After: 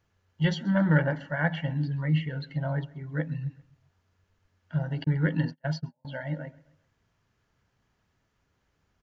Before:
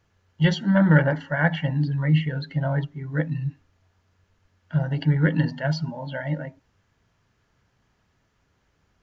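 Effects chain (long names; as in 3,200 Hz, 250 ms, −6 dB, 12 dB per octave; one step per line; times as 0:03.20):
repeating echo 132 ms, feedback 45%, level −22 dB
0:05.04–0:06.05: noise gate −25 dBFS, range −40 dB
level −5.5 dB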